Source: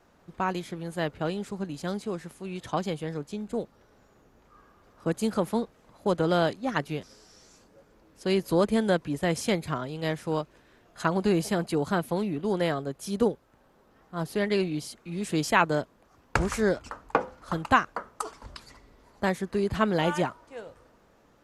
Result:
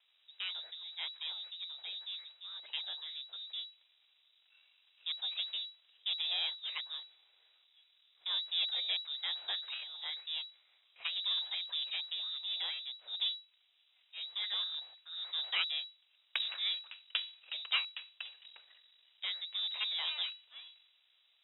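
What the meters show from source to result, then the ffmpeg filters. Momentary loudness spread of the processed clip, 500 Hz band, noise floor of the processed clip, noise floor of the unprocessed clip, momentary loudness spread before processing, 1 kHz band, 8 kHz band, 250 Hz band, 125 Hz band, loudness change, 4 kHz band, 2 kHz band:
12 LU, -36.5 dB, -72 dBFS, -61 dBFS, 13 LU, -24.0 dB, under -35 dB, under -40 dB, under -40 dB, -8.0 dB, +7.5 dB, -10.5 dB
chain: -af "aeval=exprs='if(lt(val(0),0),0.251*val(0),val(0))':c=same,lowpass=f=3.3k:t=q:w=0.5098,lowpass=f=3.3k:t=q:w=0.6013,lowpass=f=3.3k:t=q:w=0.9,lowpass=f=3.3k:t=q:w=2.563,afreqshift=-3900,lowshelf=f=340:t=q:w=1.5:g=-11.5,volume=-8dB"

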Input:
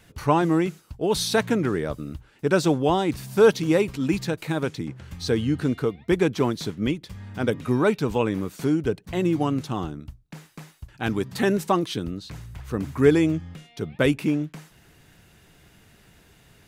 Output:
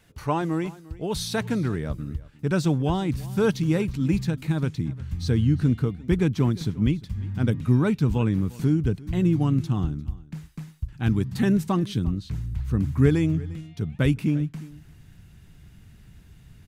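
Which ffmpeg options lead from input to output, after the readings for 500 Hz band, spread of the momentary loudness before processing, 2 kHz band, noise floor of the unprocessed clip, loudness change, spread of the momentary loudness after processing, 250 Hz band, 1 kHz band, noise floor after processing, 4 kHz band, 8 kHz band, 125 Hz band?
-7.0 dB, 14 LU, -5.5 dB, -56 dBFS, -1.0 dB, 11 LU, 0.0 dB, -6.0 dB, -51 dBFS, -5.0 dB, n/a, +6.0 dB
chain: -af "asubboost=boost=6.5:cutoff=190,aecho=1:1:350:0.0944,volume=-5dB"

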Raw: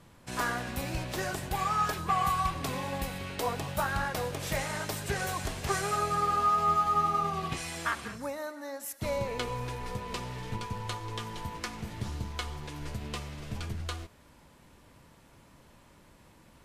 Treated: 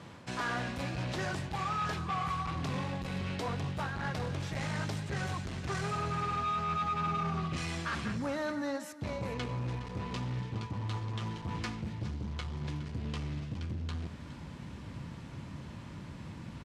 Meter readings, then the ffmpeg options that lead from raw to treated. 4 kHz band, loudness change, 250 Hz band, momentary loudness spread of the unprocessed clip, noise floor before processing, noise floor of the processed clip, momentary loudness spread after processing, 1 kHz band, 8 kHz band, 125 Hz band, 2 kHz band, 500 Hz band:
-3.5 dB, -4.0 dB, +2.0 dB, 13 LU, -58 dBFS, -46 dBFS, 12 LU, -6.0 dB, -9.0 dB, +2.5 dB, -3.0 dB, -4.5 dB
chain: -af "asubboost=boost=4:cutoff=230,areverse,acompressor=threshold=-39dB:ratio=4,areverse,asoftclip=type=hard:threshold=-38dB,highpass=100,lowpass=5.6k,aecho=1:1:415:0.178,volume=8.5dB"

